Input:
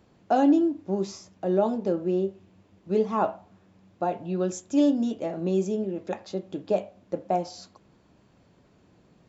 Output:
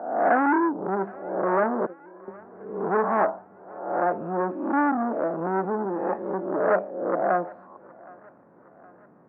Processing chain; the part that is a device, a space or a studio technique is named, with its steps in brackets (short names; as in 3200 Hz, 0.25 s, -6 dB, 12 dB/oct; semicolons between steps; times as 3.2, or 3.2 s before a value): spectral swells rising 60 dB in 0.78 s; 1.86–2.28 gate -18 dBFS, range -29 dB; public-address speaker with an overloaded transformer (core saturation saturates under 2200 Hz; BPF 240–5200 Hz); steep low-pass 1600 Hz 36 dB/oct; thinning echo 0.767 s, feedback 60%, high-pass 420 Hz, level -22.5 dB; gain +5 dB